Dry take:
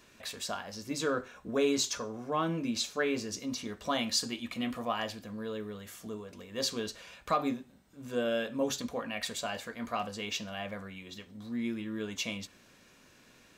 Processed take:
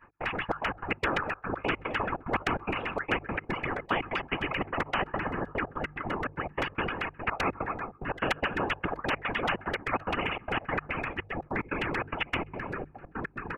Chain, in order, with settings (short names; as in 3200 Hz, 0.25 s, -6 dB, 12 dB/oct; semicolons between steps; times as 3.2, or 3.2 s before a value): elliptic low-pass 2600 Hz, stop band 40 dB; split-band echo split 570 Hz, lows 0.778 s, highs 0.121 s, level -8.5 dB; LFO low-pass saw down 7.7 Hz 610–1700 Hz; expander -46 dBFS; bell 440 Hz -12.5 dB 1.2 oct; whisperiser; step gate "x.xxx.x.x.xxx.x." 146 bpm -24 dB; notches 50/100/150 Hz; comb 2.4 ms, depth 38%; dynamic EQ 340 Hz, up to +6 dB, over -51 dBFS, Q 0.93; reverb removal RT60 2 s; spectral compressor 4:1; gain +6 dB